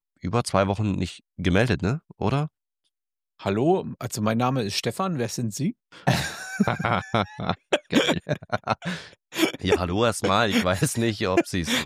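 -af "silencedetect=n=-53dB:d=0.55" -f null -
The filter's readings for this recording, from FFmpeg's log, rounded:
silence_start: 2.48
silence_end: 3.39 | silence_duration: 0.91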